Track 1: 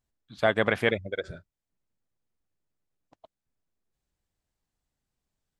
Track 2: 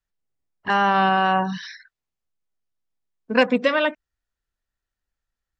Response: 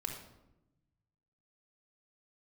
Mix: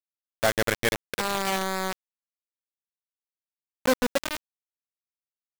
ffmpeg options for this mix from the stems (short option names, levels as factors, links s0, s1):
-filter_complex "[0:a]volume=0.944[s0];[1:a]equalizer=f=2900:w=0.8:g=-13.5,adelay=500,volume=0.501[s1];[s0][s1]amix=inputs=2:normalize=0,adynamicequalizer=threshold=0.0178:dfrequency=600:dqfactor=3:tfrequency=600:tqfactor=3:attack=5:release=100:ratio=0.375:range=2:mode=cutabove:tftype=bell,acrusher=bits=3:mix=0:aa=0.000001"